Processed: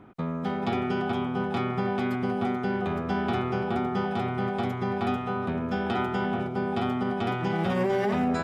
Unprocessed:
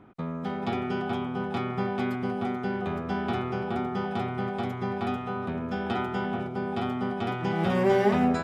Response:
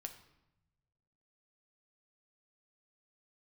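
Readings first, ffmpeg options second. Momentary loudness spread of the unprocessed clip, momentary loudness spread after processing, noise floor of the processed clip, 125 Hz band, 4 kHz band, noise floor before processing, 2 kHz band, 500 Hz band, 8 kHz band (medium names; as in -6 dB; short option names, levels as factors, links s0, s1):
8 LU, 4 LU, -32 dBFS, +1.5 dB, +1.5 dB, -35 dBFS, +1.5 dB, 0.0 dB, no reading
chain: -af "alimiter=limit=0.1:level=0:latency=1:release=54,volume=1.33"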